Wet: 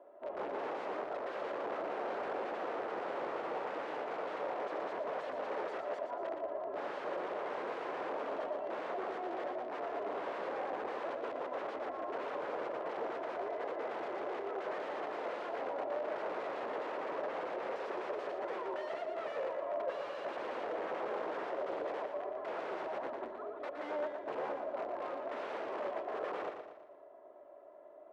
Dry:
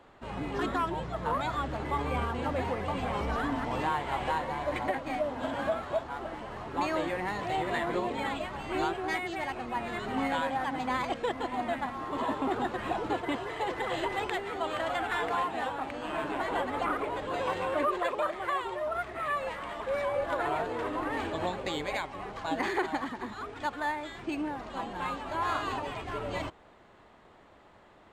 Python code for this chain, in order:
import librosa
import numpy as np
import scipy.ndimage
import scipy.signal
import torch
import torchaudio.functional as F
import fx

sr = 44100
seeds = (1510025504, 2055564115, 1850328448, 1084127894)

y = fx.octave_divider(x, sr, octaves=2, level_db=4.0)
y = fx.peak_eq(y, sr, hz=580.0, db=11.5, octaves=0.44)
y = y + 0.61 * np.pad(y, (int(3.0 * sr / 1000.0), 0))[:len(y)]
y = (np.mod(10.0 ** (24.0 / 20.0) * y + 1.0, 2.0) - 1.0) / 10.0 ** (24.0 / 20.0)
y = fx.ladder_bandpass(y, sr, hz=590.0, resonance_pct=35)
y = fx.echo_feedback(y, sr, ms=117, feedback_pct=44, wet_db=-6.5)
y = F.gain(torch.from_numpy(y), 4.5).numpy()